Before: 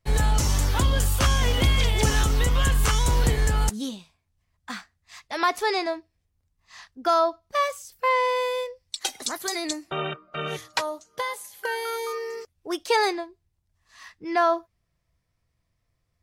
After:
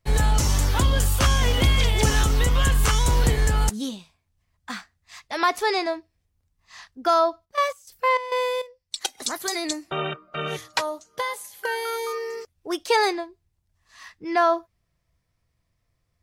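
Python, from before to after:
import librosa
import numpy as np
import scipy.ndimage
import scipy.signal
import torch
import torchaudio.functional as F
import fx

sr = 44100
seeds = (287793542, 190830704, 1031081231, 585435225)

y = fx.step_gate(x, sr, bpm=101, pattern='x.xx..x.x', floor_db=-12.0, edge_ms=4.5, at=(7.44, 9.17), fade=0.02)
y = y * 10.0 ** (1.5 / 20.0)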